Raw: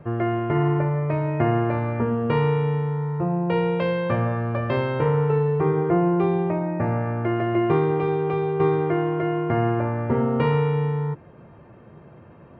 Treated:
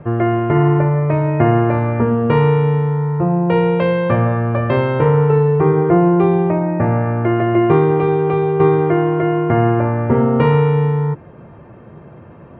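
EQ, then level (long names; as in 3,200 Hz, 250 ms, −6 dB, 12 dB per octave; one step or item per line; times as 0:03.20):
high-frequency loss of the air 190 metres
+8.0 dB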